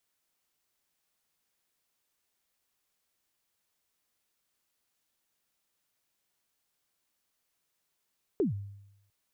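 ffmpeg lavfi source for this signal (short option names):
-f lavfi -i "aevalsrc='0.0794*pow(10,-3*t/0.86)*sin(2*PI*(450*0.131/log(100/450)*(exp(log(100/450)*min(t,0.131)/0.131)-1)+100*max(t-0.131,0)))':d=0.7:s=44100"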